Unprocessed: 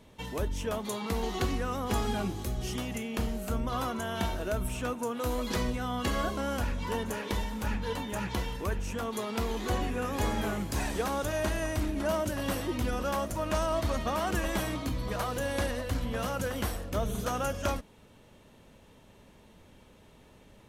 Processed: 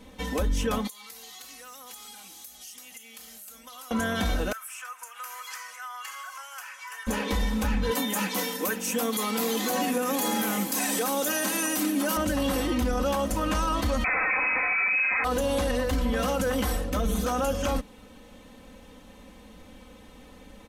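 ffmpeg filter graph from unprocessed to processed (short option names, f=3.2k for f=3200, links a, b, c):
-filter_complex "[0:a]asettb=1/sr,asplit=3[a][b][c];[a]atrim=end=0.874[d];[b]atrim=start=0.87:end=3.91,asetpts=PTS-STARTPTS,afade=t=in:d=0.004:c=qsin,afade=t=out:st=3.036:d=0.004:c=qsin,aderivative,acompressor=threshold=-49dB:ratio=4:attack=3.2:release=140:knee=1:detection=peak[e];[c]atrim=start=3.906[f];[d][e]acrossfade=d=0.004:c1=hsin:c2=qsin[g];[g][f]acrossfade=d=0.004:c1=qsin:c2=hsin,asettb=1/sr,asplit=3[h][i][j];[h]atrim=end=4.524[k];[i]atrim=start=4.52:end=7.07,asetpts=PTS-STARTPTS,afade=t=in:d=0.004:c=qsin,afade=t=out:st=2.546:d=0.004:c=qsin,highpass=f=1.2k:w=0.5412,highpass=f=1.2k:w=1.3066,equalizer=f=3.8k:w=2.6:g=-14.5,acompressor=threshold=-45dB:ratio=2.5:attack=3.2:release=140:knee=1:detection=peak[l];[j]atrim=start=7.066[m];[k][l]acrossfade=d=0.004:c1=hsin:c2=qsin[n];[n][m]acrossfade=d=0.004:c1=qsin:c2=hsin,asettb=1/sr,asplit=3[o][p][q];[o]atrim=end=7.914[r];[p]atrim=start=7.91:end=12.17,asetpts=PTS-STARTPTS,afade=t=in:d=0.004:c=qsin,afade=t=out:st=4.256:d=0.004:c=qsin,highpass=f=190:w=0.5412,highpass=f=190:w=1.3066,aemphasis=mode=production:type=50fm[s];[q]atrim=start=12.166[t];[r][s]acrossfade=d=0.004:c1=hsin:c2=qsin[u];[u][t]acrossfade=d=0.004:c1=qsin:c2=hsin,asettb=1/sr,asplit=3[v][w][x];[v]atrim=end=14.044[y];[w]atrim=start=14.04:end=15.24,asetpts=PTS-STARTPTS,afade=t=in:d=0.004:c=qsin,afade=t=out:st=1.196:d=0.004:c=qsin,aeval=exprs='0.112*sin(PI/2*3.55*val(0)/0.112)':c=same,lowpass=f=2.2k:t=q:w=0.5098,lowpass=f=2.2k:t=q:w=0.6013,lowpass=f=2.2k:t=q:w=0.9,lowpass=f=2.2k:t=q:w=2.563,afreqshift=-2600[z];[x]atrim=start=15.236[aa];[y][z]acrossfade=d=0.004:c1=hsin:c2=qsin[ab];[ab][aa]acrossfade=d=0.004:c1=qsin:c2=hsin,aecho=1:1:3.9:1,alimiter=limit=-22.5dB:level=0:latency=1:release=14,volume=4.5dB"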